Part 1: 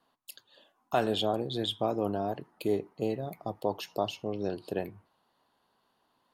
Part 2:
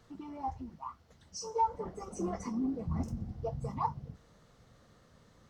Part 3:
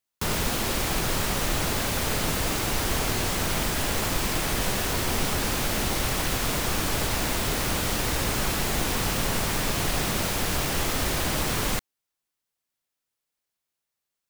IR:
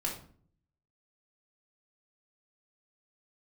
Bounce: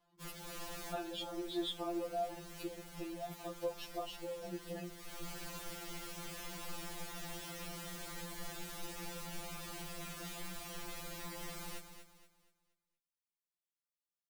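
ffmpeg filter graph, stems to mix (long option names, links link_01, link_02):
-filter_complex "[0:a]acompressor=threshold=-28dB:ratio=6,volume=-4.5dB,asplit=2[link_01][link_02];[1:a]acompressor=threshold=-44dB:ratio=6,volume=-16dB[link_03];[2:a]asoftclip=type=tanh:threshold=-23dB,volume=-15dB,asplit=2[link_04][link_05];[link_05]volume=-9.5dB[link_06];[link_02]apad=whole_len=630281[link_07];[link_04][link_07]sidechaincompress=threshold=-49dB:ratio=8:attack=16:release=364[link_08];[link_06]aecho=0:1:237|474|711|948|1185:1|0.35|0.122|0.0429|0.015[link_09];[link_01][link_03][link_08][link_09]amix=inputs=4:normalize=0,afftfilt=real='re*2.83*eq(mod(b,8),0)':imag='im*2.83*eq(mod(b,8),0)':win_size=2048:overlap=0.75"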